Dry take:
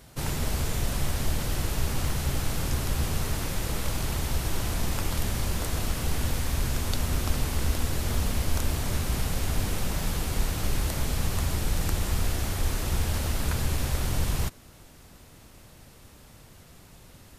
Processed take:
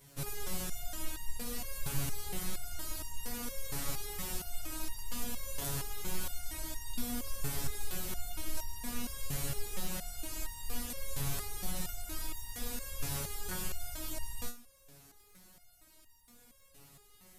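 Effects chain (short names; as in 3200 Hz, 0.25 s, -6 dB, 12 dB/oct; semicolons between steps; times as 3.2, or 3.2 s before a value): high shelf 7600 Hz +10 dB; crackle 15/s -36 dBFS; stepped resonator 4.3 Hz 140–930 Hz; gain +3 dB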